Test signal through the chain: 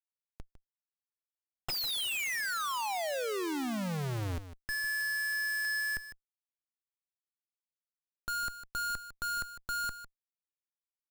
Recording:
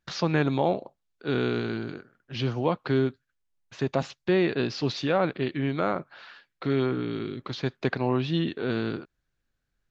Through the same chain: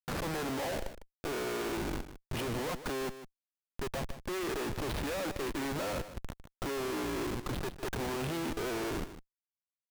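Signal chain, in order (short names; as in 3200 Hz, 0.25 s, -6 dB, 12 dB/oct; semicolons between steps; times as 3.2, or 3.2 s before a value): three-band isolator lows -14 dB, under 310 Hz, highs -22 dB, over 3000 Hz; Schmitt trigger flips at -39.5 dBFS; echo 0.153 s -12.5 dB; gain -3 dB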